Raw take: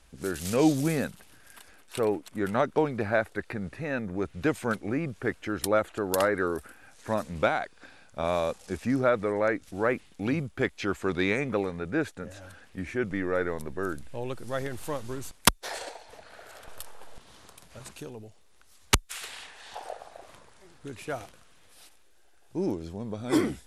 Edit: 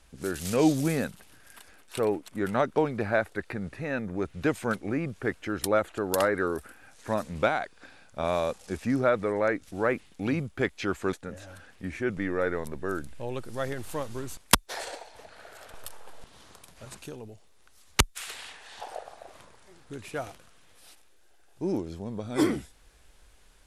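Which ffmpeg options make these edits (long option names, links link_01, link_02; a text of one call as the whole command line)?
ffmpeg -i in.wav -filter_complex "[0:a]asplit=2[link_01][link_02];[link_01]atrim=end=11.132[link_03];[link_02]atrim=start=12.068[link_04];[link_03][link_04]acrossfade=duration=0.004:curve1=hsin:curve2=hsin" out.wav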